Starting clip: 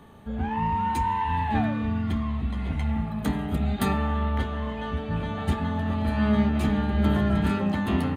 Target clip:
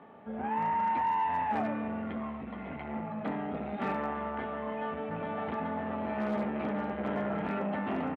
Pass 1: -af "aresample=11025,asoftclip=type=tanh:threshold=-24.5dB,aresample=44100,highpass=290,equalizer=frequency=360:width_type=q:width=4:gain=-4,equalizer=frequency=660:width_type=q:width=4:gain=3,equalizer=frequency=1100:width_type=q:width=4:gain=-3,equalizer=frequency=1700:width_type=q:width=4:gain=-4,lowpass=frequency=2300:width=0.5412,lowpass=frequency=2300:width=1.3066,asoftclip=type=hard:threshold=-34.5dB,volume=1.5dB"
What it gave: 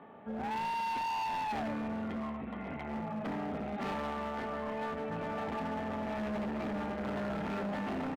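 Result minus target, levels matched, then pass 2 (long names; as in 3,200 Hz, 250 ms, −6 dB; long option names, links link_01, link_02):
hard clipping: distortion +25 dB
-af "aresample=11025,asoftclip=type=tanh:threshold=-24.5dB,aresample=44100,highpass=290,equalizer=frequency=360:width_type=q:width=4:gain=-4,equalizer=frequency=660:width_type=q:width=4:gain=3,equalizer=frequency=1100:width_type=q:width=4:gain=-3,equalizer=frequency=1700:width_type=q:width=4:gain=-4,lowpass=frequency=2300:width=0.5412,lowpass=frequency=2300:width=1.3066,asoftclip=type=hard:threshold=-25dB,volume=1.5dB"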